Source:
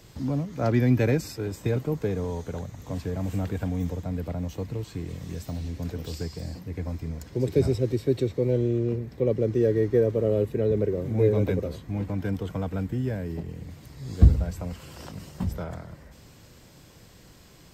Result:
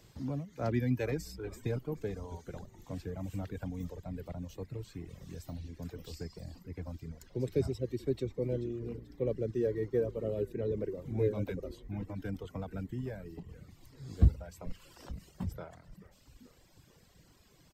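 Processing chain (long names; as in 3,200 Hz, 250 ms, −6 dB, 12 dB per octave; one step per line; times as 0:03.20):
echo with shifted repeats 435 ms, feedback 52%, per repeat −63 Hz, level −14 dB
reverb reduction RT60 1.4 s
level −8 dB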